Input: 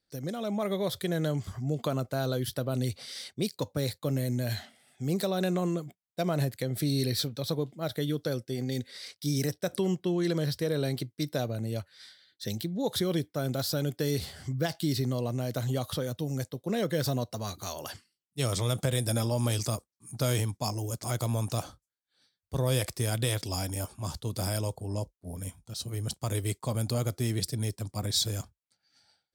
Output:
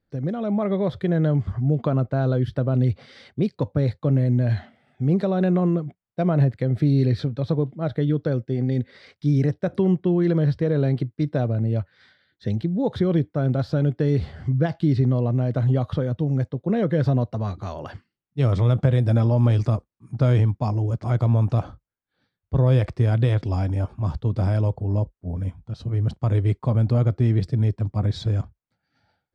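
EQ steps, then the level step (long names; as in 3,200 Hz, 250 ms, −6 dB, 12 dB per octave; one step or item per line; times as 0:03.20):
low-pass filter 1,900 Hz 12 dB per octave
low-shelf EQ 230 Hz +9 dB
+4.5 dB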